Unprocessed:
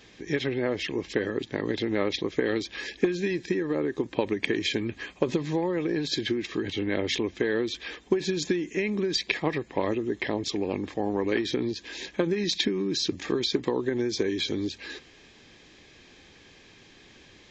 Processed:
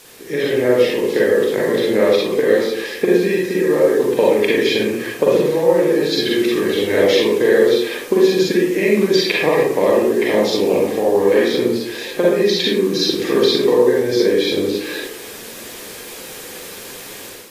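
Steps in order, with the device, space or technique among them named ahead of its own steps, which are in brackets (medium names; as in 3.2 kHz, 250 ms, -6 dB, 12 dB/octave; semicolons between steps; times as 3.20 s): filmed off a television (band-pass 190–6400 Hz; peaking EQ 480 Hz +10 dB 0.37 oct; reverberation RT60 0.70 s, pre-delay 36 ms, DRR -5 dB; white noise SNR 23 dB; level rider gain up to 9 dB; trim -1 dB; AAC 48 kbps 32 kHz)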